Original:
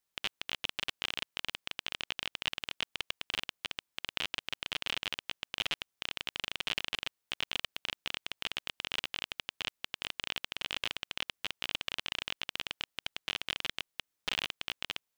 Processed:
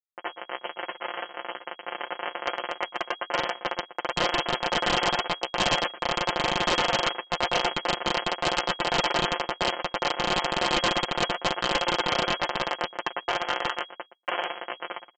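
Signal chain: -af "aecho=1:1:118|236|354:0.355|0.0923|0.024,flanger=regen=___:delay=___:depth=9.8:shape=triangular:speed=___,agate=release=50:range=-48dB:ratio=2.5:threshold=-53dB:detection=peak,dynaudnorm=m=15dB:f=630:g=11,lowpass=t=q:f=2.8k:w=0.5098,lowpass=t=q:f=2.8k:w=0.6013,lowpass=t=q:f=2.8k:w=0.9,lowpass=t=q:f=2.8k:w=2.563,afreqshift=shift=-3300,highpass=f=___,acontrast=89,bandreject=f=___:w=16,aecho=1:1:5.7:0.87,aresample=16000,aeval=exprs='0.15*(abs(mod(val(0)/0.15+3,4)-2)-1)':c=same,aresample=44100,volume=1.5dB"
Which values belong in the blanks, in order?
33, 6.5, 0.99, 470, 2.5k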